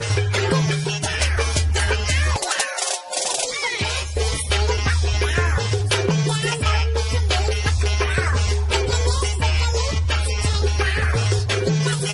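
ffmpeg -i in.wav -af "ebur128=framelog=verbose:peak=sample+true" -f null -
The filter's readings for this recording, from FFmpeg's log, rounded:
Integrated loudness:
  I:         -20.5 LUFS
  Threshold: -30.5 LUFS
Loudness range:
  LRA:         1.0 LU
  Threshold: -40.6 LUFS
  LRA low:   -21.2 LUFS
  LRA high:  -20.2 LUFS
Sample peak:
  Peak:       -9.7 dBFS
True peak:
  Peak:       -9.1 dBFS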